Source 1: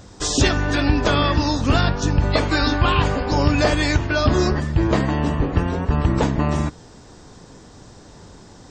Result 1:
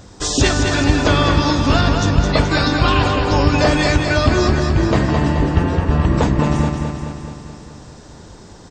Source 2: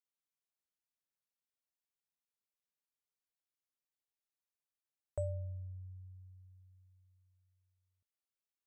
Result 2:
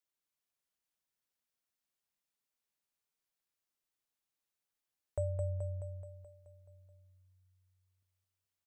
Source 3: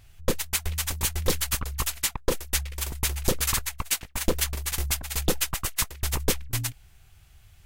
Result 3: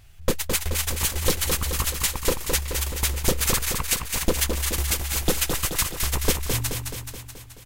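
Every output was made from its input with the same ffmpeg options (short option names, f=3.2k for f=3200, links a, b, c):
-af "aecho=1:1:214|428|642|856|1070|1284|1498|1712:0.531|0.319|0.191|0.115|0.0688|0.0413|0.0248|0.0149,volume=2dB"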